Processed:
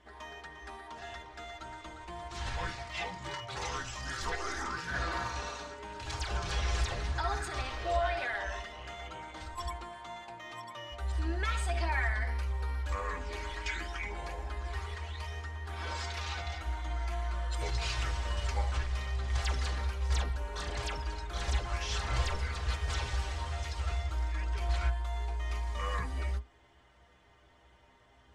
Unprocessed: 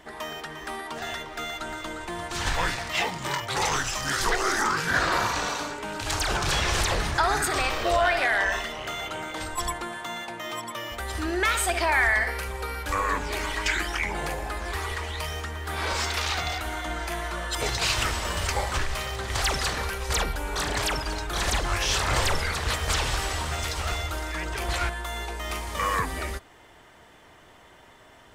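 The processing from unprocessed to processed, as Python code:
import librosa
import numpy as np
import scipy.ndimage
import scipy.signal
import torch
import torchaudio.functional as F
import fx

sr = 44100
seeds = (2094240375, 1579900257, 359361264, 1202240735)

y = scipy.signal.sosfilt(scipy.signal.butter(2, 6900.0, 'lowpass', fs=sr, output='sos'), x)
y = fx.peak_eq(y, sr, hz=70.0, db=12.5, octaves=0.77)
y = fx.stiff_resonator(y, sr, f0_hz=60.0, decay_s=0.22, stiffness=0.008)
y = y * librosa.db_to_amplitude(-5.5)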